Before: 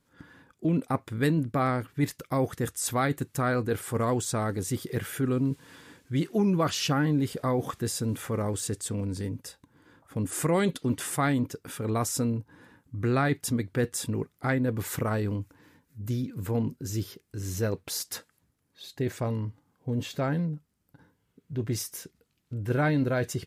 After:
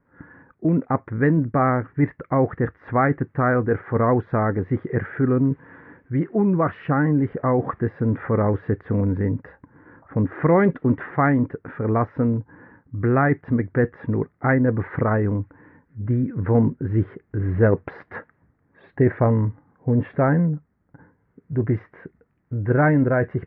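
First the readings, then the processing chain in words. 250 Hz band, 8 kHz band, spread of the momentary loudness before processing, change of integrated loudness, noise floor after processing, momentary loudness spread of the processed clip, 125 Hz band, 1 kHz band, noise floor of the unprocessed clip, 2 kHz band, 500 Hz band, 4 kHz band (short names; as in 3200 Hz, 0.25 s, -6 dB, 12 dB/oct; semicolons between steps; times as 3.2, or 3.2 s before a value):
+7.5 dB, under -40 dB, 11 LU, +7.5 dB, -66 dBFS, 9 LU, +8.0 dB, +7.5 dB, -74 dBFS, +7.0 dB, +8.5 dB, under -20 dB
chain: vocal rider 2 s; elliptic low-pass 1900 Hz, stop band 80 dB; gain +8.5 dB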